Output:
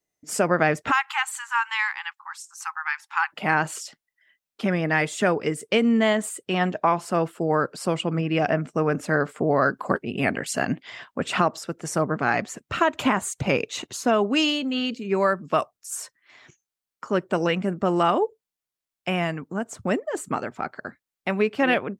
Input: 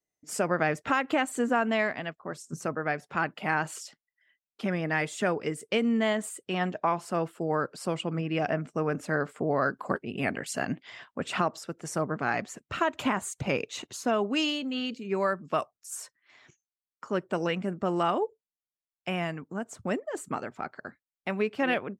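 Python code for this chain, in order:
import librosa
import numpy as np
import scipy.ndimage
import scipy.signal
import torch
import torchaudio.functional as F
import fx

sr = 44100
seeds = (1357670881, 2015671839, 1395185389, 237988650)

y = fx.brickwall_highpass(x, sr, low_hz=790.0, at=(0.9, 3.32), fade=0.02)
y = F.gain(torch.from_numpy(y), 6.0).numpy()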